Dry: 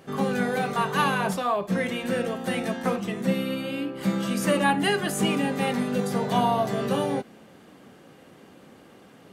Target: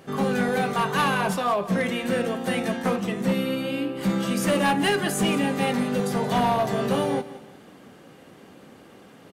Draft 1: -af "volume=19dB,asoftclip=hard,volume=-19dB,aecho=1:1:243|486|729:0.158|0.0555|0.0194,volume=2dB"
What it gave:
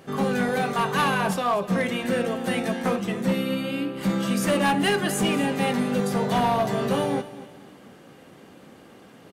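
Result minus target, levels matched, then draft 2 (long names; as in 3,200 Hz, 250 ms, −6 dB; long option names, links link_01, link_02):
echo 68 ms late
-af "volume=19dB,asoftclip=hard,volume=-19dB,aecho=1:1:175|350|525:0.158|0.0555|0.0194,volume=2dB"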